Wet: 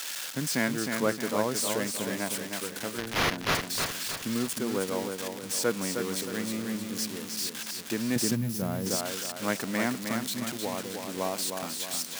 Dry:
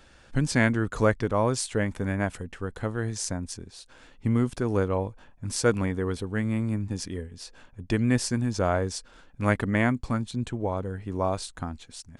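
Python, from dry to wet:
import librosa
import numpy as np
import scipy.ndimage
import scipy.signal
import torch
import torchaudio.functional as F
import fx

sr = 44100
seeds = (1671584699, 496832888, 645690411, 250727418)

y = x + 0.5 * 10.0 ** (-15.0 / 20.0) * np.diff(np.sign(x), prepend=np.sign(x[:1]))
y = scipy.signal.sosfilt(scipy.signal.butter(4, 160.0, 'highpass', fs=sr, output='sos'), y)
y = fx.sample_hold(y, sr, seeds[0], rate_hz=8200.0, jitter_pct=0, at=(2.98, 3.55))
y = fx.high_shelf(y, sr, hz=7700.0, db=-10.0)
y = fx.echo_feedback(y, sr, ms=311, feedback_pct=44, wet_db=-5.5)
y = fx.spec_box(y, sr, start_s=8.35, length_s=0.52, low_hz=220.0, high_hz=10000.0, gain_db=-9)
y = fx.low_shelf(y, sr, hz=440.0, db=9.0, at=(8.16, 8.96))
y = y * librosa.db_to_amplitude(-5.0)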